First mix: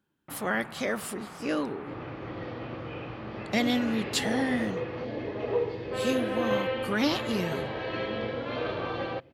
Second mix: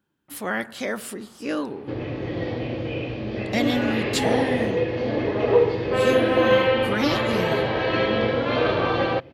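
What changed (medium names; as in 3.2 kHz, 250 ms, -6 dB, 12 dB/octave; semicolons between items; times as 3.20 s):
speech: send +6.5 dB; first sound -11.5 dB; second sound +10.5 dB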